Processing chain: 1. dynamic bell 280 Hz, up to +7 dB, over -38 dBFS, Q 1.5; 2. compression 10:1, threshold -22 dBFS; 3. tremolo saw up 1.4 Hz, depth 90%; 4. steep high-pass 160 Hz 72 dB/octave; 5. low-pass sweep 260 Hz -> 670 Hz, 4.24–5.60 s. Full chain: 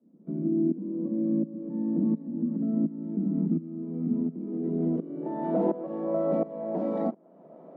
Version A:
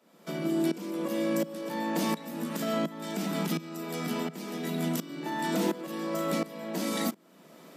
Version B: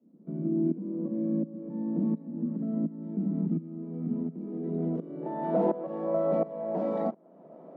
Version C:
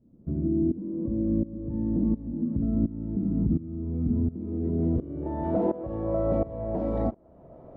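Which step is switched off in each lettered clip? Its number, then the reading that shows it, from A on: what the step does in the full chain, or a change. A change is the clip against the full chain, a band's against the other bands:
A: 5, 1 kHz band +7.5 dB; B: 1, 250 Hz band -3.0 dB; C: 4, 125 Hz band +6.0 dB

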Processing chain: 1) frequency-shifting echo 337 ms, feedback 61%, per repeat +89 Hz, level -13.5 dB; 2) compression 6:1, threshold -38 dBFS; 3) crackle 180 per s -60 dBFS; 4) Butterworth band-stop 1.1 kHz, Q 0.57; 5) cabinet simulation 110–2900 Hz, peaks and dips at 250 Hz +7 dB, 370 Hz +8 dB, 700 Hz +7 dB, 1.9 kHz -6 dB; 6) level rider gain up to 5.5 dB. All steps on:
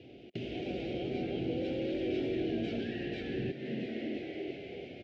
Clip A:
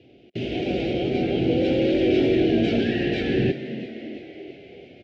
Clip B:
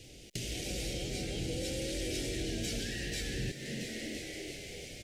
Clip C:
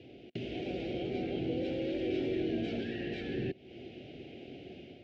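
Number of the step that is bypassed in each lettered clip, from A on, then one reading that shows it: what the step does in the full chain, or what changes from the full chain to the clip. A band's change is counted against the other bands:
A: 2, mean gain reduction 8.0 dB; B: 5, 4 kHz band +13.0 dB; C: 1, momentary loudness spread change +7 LU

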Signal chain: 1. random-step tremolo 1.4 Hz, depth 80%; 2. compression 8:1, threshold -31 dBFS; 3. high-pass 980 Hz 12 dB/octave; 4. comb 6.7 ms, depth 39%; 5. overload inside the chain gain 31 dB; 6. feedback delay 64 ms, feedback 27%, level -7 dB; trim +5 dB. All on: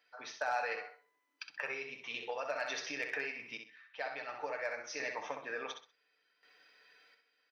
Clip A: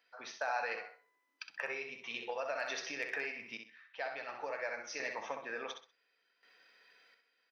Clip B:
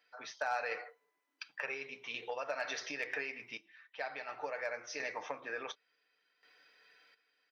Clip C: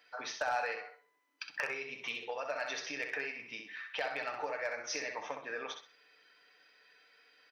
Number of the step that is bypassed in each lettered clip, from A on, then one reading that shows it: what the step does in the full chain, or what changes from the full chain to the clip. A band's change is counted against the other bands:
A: 4, 125 Hz band -1.5 dB; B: 6, crest factor change -2.0 dB; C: 1, momentary loudness spread change -3 LU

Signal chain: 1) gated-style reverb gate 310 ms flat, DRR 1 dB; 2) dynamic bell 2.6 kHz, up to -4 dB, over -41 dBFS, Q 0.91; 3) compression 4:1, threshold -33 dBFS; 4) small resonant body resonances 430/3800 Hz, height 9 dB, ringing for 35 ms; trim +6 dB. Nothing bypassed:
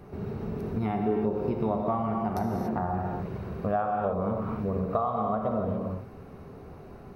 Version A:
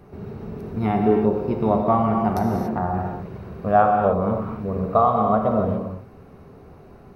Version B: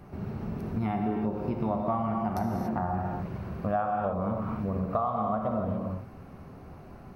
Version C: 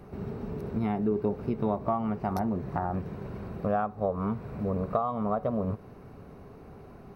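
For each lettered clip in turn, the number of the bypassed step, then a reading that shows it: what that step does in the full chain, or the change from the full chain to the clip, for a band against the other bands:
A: 3, crest factor change +2.0 dB; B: 4, 500 Hz band -2.5 dB; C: 1, momentary loudness spread change +2 LU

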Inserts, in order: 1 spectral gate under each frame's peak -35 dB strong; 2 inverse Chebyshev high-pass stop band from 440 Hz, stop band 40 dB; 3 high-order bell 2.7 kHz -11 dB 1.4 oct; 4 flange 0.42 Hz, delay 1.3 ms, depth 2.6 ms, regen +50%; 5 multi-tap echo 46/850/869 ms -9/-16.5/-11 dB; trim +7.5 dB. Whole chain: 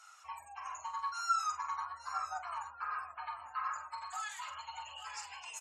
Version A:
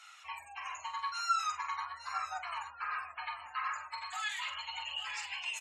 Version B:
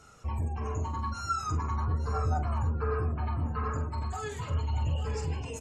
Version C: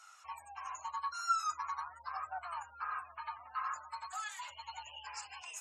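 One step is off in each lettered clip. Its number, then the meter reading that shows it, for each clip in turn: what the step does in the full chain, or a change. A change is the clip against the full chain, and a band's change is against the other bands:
3, 4 kHz band +8.5 dB; 2, 500 Hz band +24.0 dB; 5, echo-to-direct -6.5 dB to none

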